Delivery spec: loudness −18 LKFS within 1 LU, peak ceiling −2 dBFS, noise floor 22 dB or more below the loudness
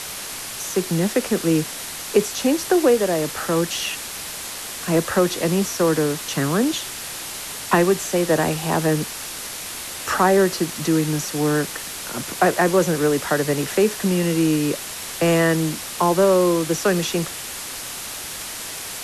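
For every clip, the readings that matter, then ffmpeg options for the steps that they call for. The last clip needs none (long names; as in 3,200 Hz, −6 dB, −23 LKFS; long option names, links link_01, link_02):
background noise floor −32 dBFS; target noise floor −44 dBFS; integrated loudness −21.5 LKFS; sample peak −4.0 dBFS; target loudness −18.0 LKFS
→ -af "afftdn=noise_reduction=12:noise_floor=-32"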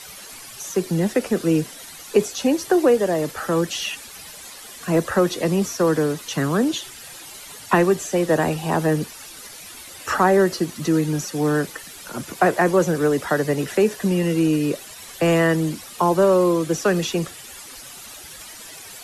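background noise floor −40 dBFS; target noise floor −43 dBFS
→ -af "afftdn=noise_reduction=6:noise_floor=-40"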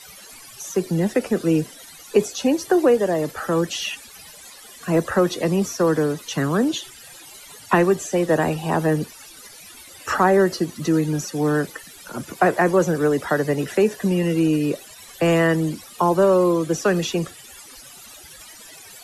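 background noise floor −43 dBFS; integrated loudness −21.0 LKFS; sample peak −4.0 dBFS; target loudness −18.0 LKFS
→ -af "volume=3dB,alimiter=limit=-2dB:level=0:latency=1"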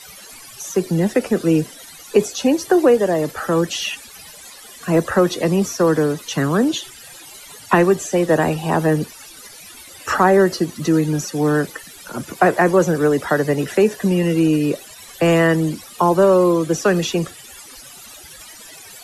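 integrated loudness −18.0 LKFS; sample peak −2.0 dBFS; background noise floor −40 dBFS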